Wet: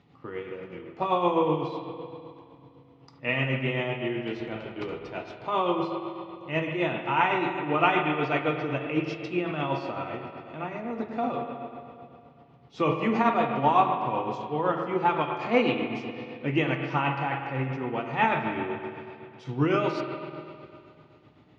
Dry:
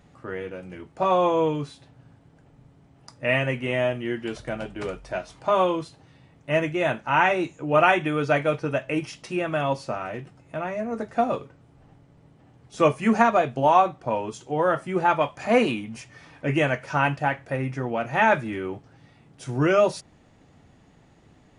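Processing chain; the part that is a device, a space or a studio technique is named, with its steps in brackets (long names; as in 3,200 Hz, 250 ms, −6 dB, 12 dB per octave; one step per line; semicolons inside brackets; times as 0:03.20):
combo amplifier with spring reverb and tremolo (spring reverb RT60 2.5 s, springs 45/51 ms, chirp 30 ms, DRR 3 dB; amplitude tremolo 7.9 Hz, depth 45%; loudspeaker in its box 110–4,500 Hz, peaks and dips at 200 Hz −4 dB, 610 Hz −10 dB, 1,600 Hz −9 dB)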